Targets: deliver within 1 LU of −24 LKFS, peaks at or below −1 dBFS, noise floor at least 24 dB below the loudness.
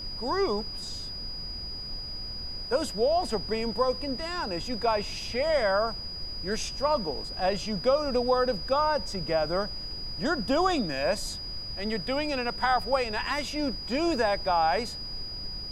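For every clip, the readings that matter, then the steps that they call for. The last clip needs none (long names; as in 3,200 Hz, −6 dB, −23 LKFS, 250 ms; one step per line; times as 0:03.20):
interfering tone 4,900 Hz; level of the tone −36 dBFS; background noise floor −38 dBFS; target noise floor −53 dBFS; integrated loudness −28.5 LKFS; sample peak −12.5 dBFS; target loudness −24.0 LKFS
→ notch filter 4,900 Hz, Q 30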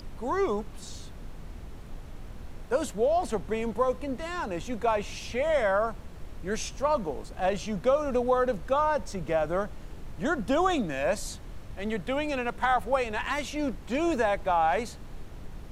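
interfering tone none found; background noise floor −43 dBFS; target noise floor −53 dBFS
→ noise reduction from a noise print 10 dB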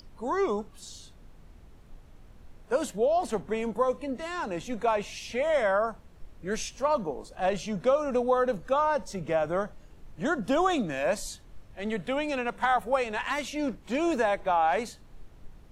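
background noise floor −52 dBFS; target noise floor −53 dBFS
→ noise reduction from a noise print 6 dB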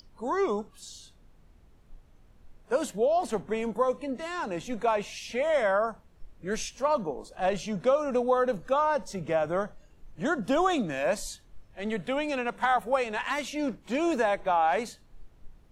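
background noise floor −58 dBFS; integrated loudness −28.5 LKFS; sample peak −12.5 dBFS; target loudness −24.0 LKFS
→ level +4.5 dB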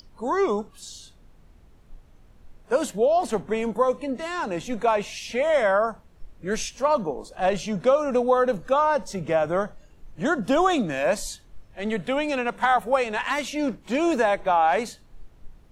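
integrated loudness −24.0 LKFS; sample peak −8.0 dBFS; background noise floor −53 dBFS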